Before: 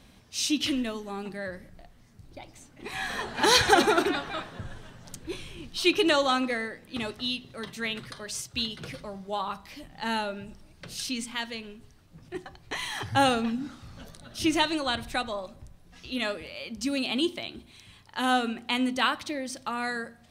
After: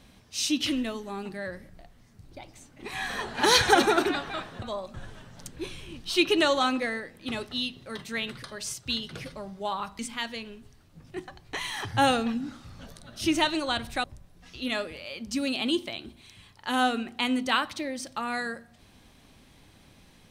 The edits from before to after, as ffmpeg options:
ffmpeg -i in.wav -filter_complex "[0:a]asplit=5[link_01][link_02][link_03][link_04][link_05];[link_01]atrim=end=4.622[link_06];[link_02]atrim=start=15.218:end=15.542[link_07];[link_03]atrim=start=4.618:end=9.672[link_08];[link_04]atrim=start=11.168:end=15.222[link_09];[link_05]atrim=start=15.538[link_10];[link_06][link_07]acrossfade=duration=0.004:curve1=hsin:curve2=hsin[link_11];[link_11][link_08]acrossfade=duration=0.004:curve1=hsin:curve2=hsin[link_12];[link_12][link_09]acrossfade=duration=0.004:curve1=hsin:curve2=hsin[link_13];[link_13][link_10]acrossfade=duration=0.004:curve1=hsin:curve2=hsin" out.wav

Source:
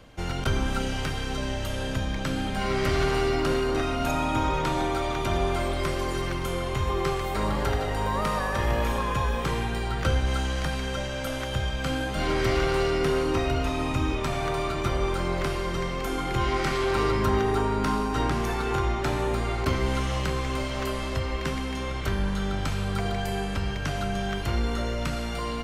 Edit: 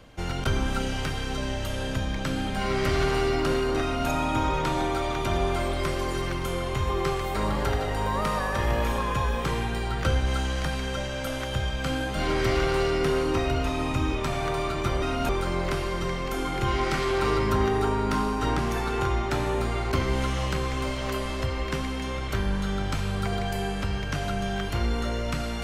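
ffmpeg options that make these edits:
ffmpeg -i in.wav -filter_complex "[0:a]asplit=3[link_01][link_02][link_03];[link_01]atrim=end=15.022[link_04];[link_02]atrim=start=3.818:end=4.092[link_05];[link_03]atrim=start=15.018[link_06];[link_04][link_05]acrossfade=duration=0.004:curve1=hsin:curve2=hsin[link_07];[link_07][link_06]acrossfade=duration=0.004:curve1=hsin:curve2=hsin" out.wav

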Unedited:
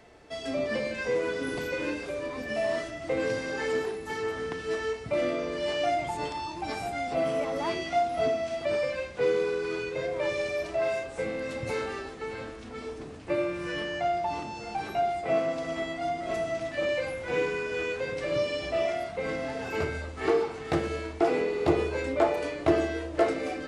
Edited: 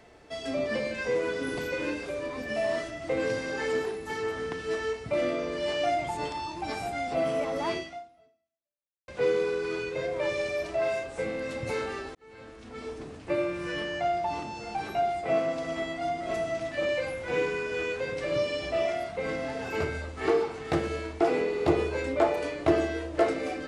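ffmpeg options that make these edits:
ffmpeg -i in.wav -filter_complex "[0:a]asplit=3[link_01][link_02][link_03];[link_01]atrim=end=9.08,asetpts=PTS-STARTPTS,afade=type=out:start_time=7.77:duration=1.31:curve=exp[link_04];[link_02]atrim=start=9.08:end=12.15,asetpts=PTS-STARTPTS,afade=type=in:duration=0.004:curve=hsin,afade=type=out:start_time=3.066:duration=0.004:curve=hsin[link_05];[link_03]atrim=start=12.15,asetpts=PTS-STARTPTS,afade=type=in:duration=0.74[link_06];[link_04][link_05][link_06]concat=n=3:v=0:a=1" out.wav

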